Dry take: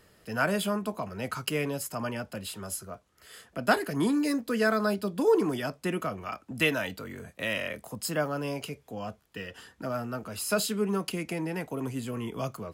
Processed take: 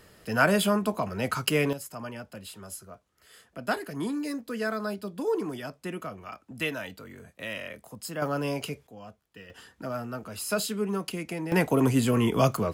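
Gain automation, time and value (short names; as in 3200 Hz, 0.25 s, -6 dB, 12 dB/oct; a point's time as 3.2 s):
+5 dB
from 1.73 s -5 dB
from 8.22 s +3 dB
from 8.87 s -8.5 dB
from 9.5 s -1 dB
from 11.52 s +11 dB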